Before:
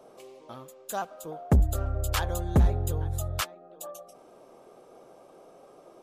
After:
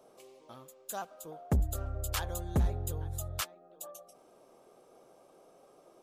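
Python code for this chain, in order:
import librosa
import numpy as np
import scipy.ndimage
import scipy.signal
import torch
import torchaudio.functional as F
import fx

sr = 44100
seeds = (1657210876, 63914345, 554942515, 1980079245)

y = fx.high_shelf(x, sr, hz=4100.0, db=6.0)
y = y * 10.0 ** (-7.5 / 20.0)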